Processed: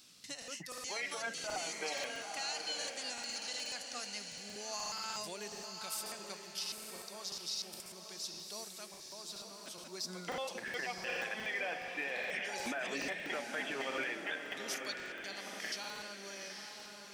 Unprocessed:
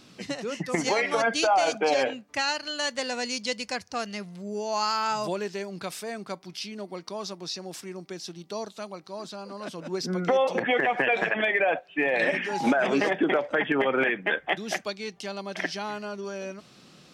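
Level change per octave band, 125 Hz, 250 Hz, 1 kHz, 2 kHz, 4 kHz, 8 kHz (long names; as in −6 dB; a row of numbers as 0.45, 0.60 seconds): −17.5, −18.5, −16.0, −11.5, −6.5, −3.0 decibels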